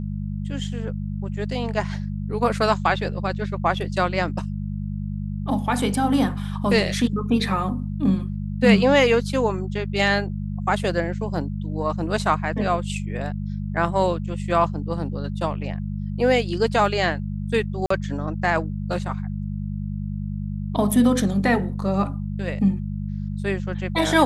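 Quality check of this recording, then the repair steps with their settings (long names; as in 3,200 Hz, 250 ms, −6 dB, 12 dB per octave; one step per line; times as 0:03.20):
mains hum 50 Hz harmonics 4 −28 dBFS
0:17.86–0:17.90: drop-out 44 ms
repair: hum removal 50 Hz, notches 4
repair the gap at 0:17.86, 44 ms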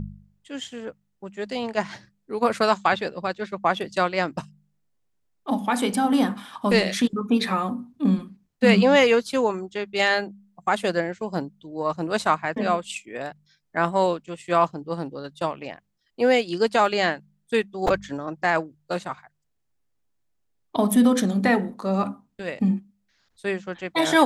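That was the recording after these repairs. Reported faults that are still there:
none of them is left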